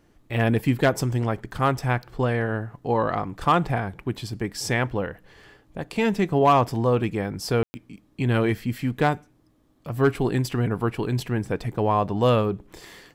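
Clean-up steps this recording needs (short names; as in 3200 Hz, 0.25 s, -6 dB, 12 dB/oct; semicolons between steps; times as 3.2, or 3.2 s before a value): clip repair -10.5 dBFS; room tone fill 7.63–7.74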